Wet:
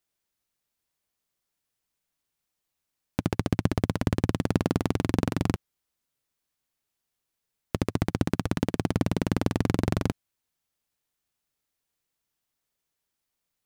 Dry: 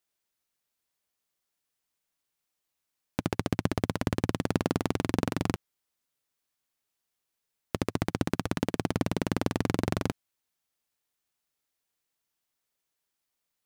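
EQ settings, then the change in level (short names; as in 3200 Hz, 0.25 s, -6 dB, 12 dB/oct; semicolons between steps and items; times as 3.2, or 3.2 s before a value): low shelf 220 Hz +6.5 dB; 0.0 dB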